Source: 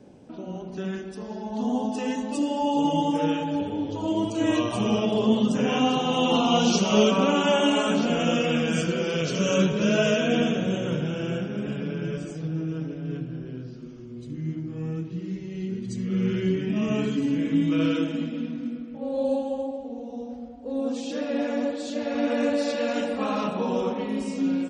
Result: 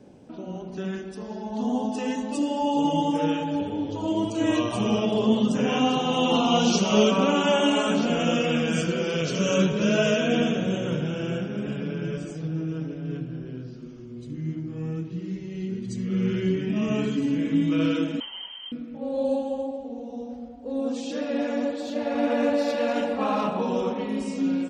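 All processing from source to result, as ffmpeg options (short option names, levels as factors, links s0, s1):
-filter_complex "[0:a]asettb=1/sr,asplit=3[s0][s1][s2];[s0]atrim=end=18.204[s3];[s1]atrim=start=18.2:end=18.72,asetpts=PTS-STARTPTS,afade=t=in:d=0.004:c=qsin,afade=t=out:st=0.516:d=0.004:c=qsin,highpass=410,lowpass=f=2900:t=q:w=0.5098,lowpass=f=2900:t=q:w=0.6013,lowpass=f=2900:t=q:w=0.9,lowpass=f=2900:t=q:w=2.563,afreqshift=-3400[s4];[s2]atrim=start=18.716[s5];[s3][s4]acrossfade=d=0.004:c1=hsin:c2=qsin[s6];[s6][s5]acrossfade=d=0.004:c1=qsin:c2=hsin,asettb=1/sr,asplit=3[s7][s8][s9];[s7]atrim=end=21.804[s10];[s8]atrim=start=21.8:end=23.61,asetpts=PTS-STARTPTS,afade=t=in:d=0.004:c=qsin,afade=t=out:st=1.806:d=0.004:c=qsin,equalizer=f=830:w=1.7:g=5,acrusher=bits=9:mode=log:mix=0:aa=0.000001,adynamicsmooth=sensitivity=4.5:basefreq=5200[s11];[s9]atrim=start=23.606[s12];[s10][s11]acrossfade=d=0.004:c1=hsin:c2=qsin[s13];[s13][s12]acrossfade=d=0.004:c1=qsin:c2=hsin"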